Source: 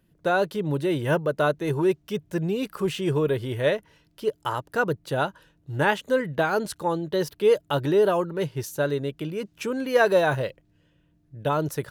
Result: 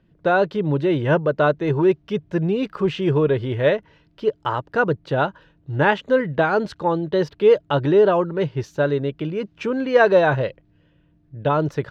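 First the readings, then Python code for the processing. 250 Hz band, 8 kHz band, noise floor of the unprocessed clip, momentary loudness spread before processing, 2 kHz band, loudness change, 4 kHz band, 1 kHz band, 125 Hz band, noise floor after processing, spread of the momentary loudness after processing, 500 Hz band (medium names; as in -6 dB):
+5.0 dB, under -10 dB, -65 dBFS, 9 LU, +4.0 dB, +5.0 dB, +1.0 dB, +4.5 dB, +5.5 dB, -60 dBFS, 9 LU, +5.0 dB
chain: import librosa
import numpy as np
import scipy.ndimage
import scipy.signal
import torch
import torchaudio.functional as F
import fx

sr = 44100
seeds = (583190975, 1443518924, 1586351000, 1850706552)

y = fx.air_absorb(x, sr, metres=200.0)
y = y * librosa.db_to_amplitude(5.5)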